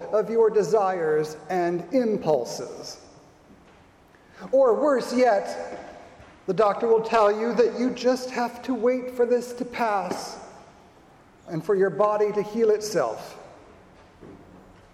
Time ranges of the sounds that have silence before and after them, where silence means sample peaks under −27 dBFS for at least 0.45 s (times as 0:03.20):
0:04.46–0:05.75
0:06.49–0:10.31
0:11.53–0:13.14